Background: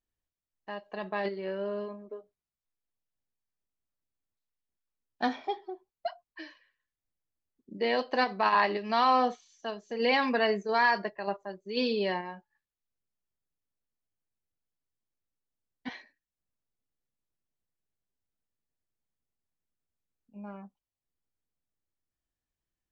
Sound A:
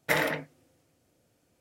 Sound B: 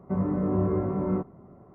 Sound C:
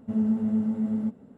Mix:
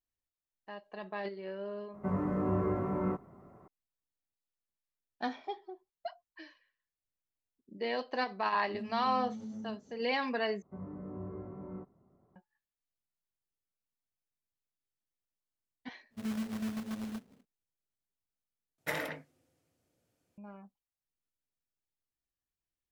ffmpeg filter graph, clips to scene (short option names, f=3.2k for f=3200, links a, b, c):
-filter_complex "[2:a]asplit=2[a][b];[3:a]asplit=2[c][d];[0:a]volume=-6.5dB[e];[a]tiltshelf=f=970:g=-6[f];[c]acompressor=threshold=-29dB:ratio=6:attack=3.2:release=140:knee=1:detection=peak[g];[d]acrusher=bits=2:mode=log:mix=0:aa=0.000001[h];[e]asplit=3[i][j][k];[i]atrim=end=10.624[l];[b]atrim=end=1.74,asetpts=PTS-STARTPTS,volume=-17.5dB[m];[j]atrim=start=12.356:end=18.784[n];[1:a]atrim=end=1.6,asetpts=PTS-STARTPTS,volume=-9.5dB[o];[k]atrim=start=20.376[p];[f]atrim=end=1.74,asetpts=PTS-STARTPTS,volume=-1dB,afade=t=in:d=0.004:c=hsin,afade=t=out:st=1.736:d=0.004:c=hsin,adelay=1940[q];[g]atrim=end=1.37,asetpts=PTS-STARTPTS,volume=-10.5dB,afade=t=in:d=0.004:c=hsin,afade=t=out:st=1.366:d=0.004:c=hsin,adelay=381906S[r];[h]atrim=end=1.37,asetpts=PTS-STARTPTS,volume=-12.5dB,afade=t=in:d=0.1,afade=t=out:st=1.27:d=0.1,adelay=16090[s];[l][m]acrossfade=d=0.004:c1=hsin:c2=hsin[t];[t][n]acrossfade=d=0.004:c1=hsin:c2=hsin[u];[u][o]acrossfade=d=0.004:c1=hsin:c2=hsin[v];[v][p]acrossfade=d=0.004:c1=hsin:c2=hsin[w];[w][q][r][s]amix=inputs=4:normalize=0"